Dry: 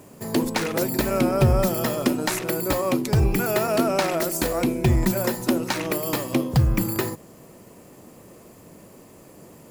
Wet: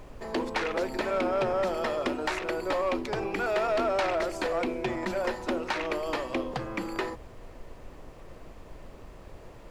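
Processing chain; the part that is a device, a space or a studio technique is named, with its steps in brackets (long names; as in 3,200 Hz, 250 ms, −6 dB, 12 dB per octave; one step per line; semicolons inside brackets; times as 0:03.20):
aircraft cabin announcement (band-pass filter 440–3,200 Hz; soft clipping −20.5 dBFS, distortion −15 dB; brown noise bed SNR 14 dB)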